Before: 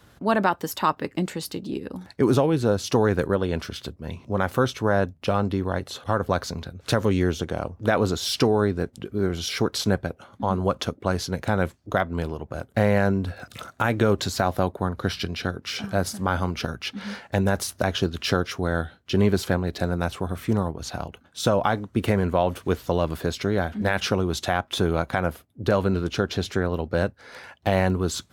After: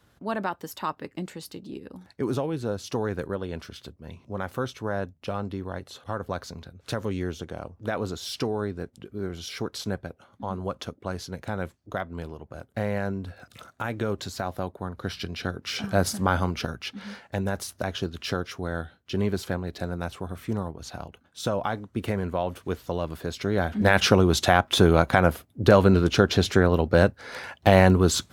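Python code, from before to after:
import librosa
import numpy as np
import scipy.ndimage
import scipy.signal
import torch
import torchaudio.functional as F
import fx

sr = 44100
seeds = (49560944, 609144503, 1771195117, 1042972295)

y = fx.gain(x, sr, db=fx.line((14.84, -8.0), (16.12, 2.5), (17.15, -6.0), (23.25, -6.0), (23.95, 5.0)))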